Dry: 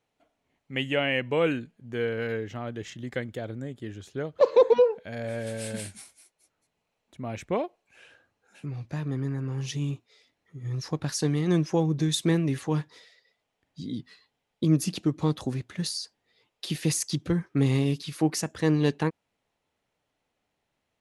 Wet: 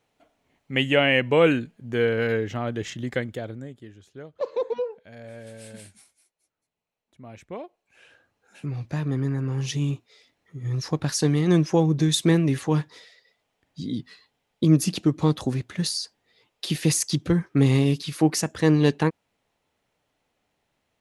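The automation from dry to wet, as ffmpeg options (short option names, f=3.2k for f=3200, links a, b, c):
-af "volume=19.5dB,afade=t=out:st=3:d=0.56:silence=0.446684,afade=t=out:st=3.56:d=0.36:silence=0.398107,afade=t=in:st=7.58:d=1.1:silence=0.223872"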